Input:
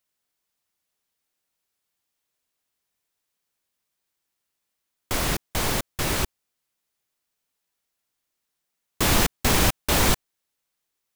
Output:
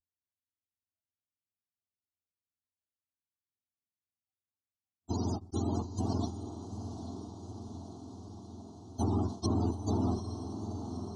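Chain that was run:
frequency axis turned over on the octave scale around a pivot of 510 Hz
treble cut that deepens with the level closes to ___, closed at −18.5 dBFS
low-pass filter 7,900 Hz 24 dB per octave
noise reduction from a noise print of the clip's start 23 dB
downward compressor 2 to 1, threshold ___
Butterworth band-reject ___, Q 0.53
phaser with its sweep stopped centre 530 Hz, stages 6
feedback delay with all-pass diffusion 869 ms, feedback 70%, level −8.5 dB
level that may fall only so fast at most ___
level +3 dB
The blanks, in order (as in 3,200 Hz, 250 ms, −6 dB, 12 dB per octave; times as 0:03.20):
2,100 Hz, −28 dBFS, 2,100 Hz, 140 dB per second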